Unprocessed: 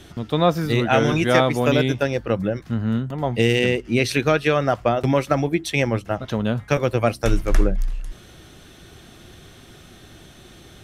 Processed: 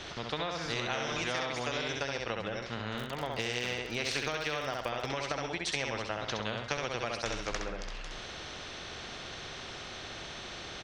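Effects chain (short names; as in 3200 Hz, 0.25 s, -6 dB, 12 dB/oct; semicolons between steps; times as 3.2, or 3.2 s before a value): LPF 5600 Hz 24 dB/oct; resonant low shelf 380 Hz -6.5 dB, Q 1.5; feedback echo 66 ms, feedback 24%, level -5 dB; 2.97–5.1 crackle 62/s -39 dBFS; compressor, threshold -22 dBFS, peak gain reduction 10.5 dB; spectral compressor 2:1; gain -5 dB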